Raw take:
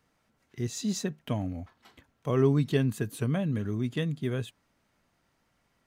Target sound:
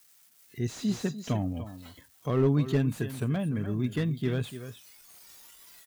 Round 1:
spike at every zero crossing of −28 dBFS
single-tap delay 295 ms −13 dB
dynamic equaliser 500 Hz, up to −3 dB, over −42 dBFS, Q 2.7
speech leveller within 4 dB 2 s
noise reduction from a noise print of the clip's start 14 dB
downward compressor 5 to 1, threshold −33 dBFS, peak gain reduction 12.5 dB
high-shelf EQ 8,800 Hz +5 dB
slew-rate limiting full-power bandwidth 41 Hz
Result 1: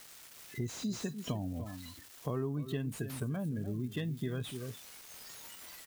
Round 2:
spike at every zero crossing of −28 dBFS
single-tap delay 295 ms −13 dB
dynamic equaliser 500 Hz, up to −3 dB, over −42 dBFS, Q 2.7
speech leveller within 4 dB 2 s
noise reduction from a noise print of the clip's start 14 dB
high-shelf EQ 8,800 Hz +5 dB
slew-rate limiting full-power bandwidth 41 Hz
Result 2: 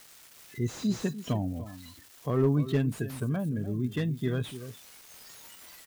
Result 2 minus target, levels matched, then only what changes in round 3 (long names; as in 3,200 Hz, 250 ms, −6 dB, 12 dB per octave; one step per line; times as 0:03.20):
spike at every zero crossing: distortion +11 dB
change: spike at every zero crossing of −39.5 dBFS